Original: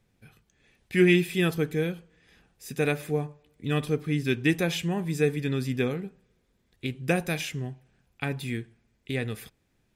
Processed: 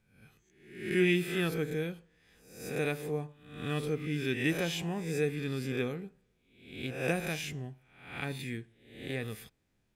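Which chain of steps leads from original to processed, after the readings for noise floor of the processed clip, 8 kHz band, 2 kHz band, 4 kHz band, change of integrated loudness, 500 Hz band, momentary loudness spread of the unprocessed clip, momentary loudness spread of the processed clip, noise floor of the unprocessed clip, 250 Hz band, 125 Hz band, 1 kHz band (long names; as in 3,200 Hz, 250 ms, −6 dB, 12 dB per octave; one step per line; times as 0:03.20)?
−74 dBFS, −4.0 dB, −4.5 dB, −4.5 dB, −6.0 dB, −5.5 dB, 14 LU, 16 LU, −71 dBFS, −6.5 dB, −7.0 dB, −5.5 dB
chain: peak hold with a rise ahead of every peak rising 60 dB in 0.65 s
level −7.5 dB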